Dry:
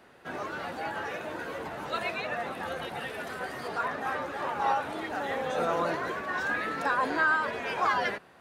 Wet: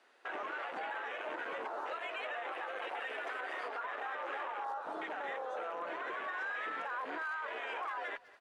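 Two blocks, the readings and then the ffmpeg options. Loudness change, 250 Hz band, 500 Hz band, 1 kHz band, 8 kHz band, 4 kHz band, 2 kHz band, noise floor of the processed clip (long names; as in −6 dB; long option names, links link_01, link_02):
−8.5 dB, −14.5 dB, −9.0 dB, −8.5 dB, below −15 dB, −8.5 dB, −8.0 dB, −59 dBFS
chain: -filter_complex "[0:a]lowshelf=frequency=490:gain=-10,acrossover=split=1600[link_01][link_02];[link_02]asoftclip=type=hard:threshold=-38.5dB[link_03];[link_01][link_03]amix=inputs=2:normalize=0,lowpass=10000,asplit=2[link_04][link_05];[link_05]aeval=exprs='(mod(11.2*val(0)+1,2)-1)/11.2':channel_layout=same,volume=-9dB[link_06];[link_04][link_06]amix=inputs=2:normalize=0,acompressor=threshold=-35dB:ratio=4,highpass=frequency=270:width=0.5412,highpass=frequency=270:width=1.3066,afwtdn=0.0112,aemphasis=mode=production:type=50kf,adynamicsmooth=sensitivity=4:basefreq=7000,asplit=2[link_07][link_08];[link_08]adelay=200,highpass=300,lowpass=3400,asoftclip=type=hard:threshold=-36dB,volume=-25dB[link_09];[link_07][link_09]amix=inputs=2:normalize=0,alimiter=level_in=13.5dB:limit=-24dB:level=0:latency=1:release=152,volume=-13.5dB,volume=6dB"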